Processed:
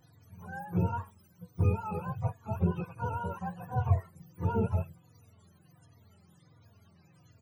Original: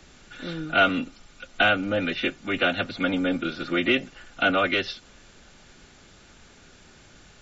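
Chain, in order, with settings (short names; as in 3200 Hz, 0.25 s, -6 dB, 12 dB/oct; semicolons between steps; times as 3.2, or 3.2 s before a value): spectrum mirrored in octaves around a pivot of 510 Hz; endless flanger 3.5 ms -1.4 Hz; gain -5.5 dB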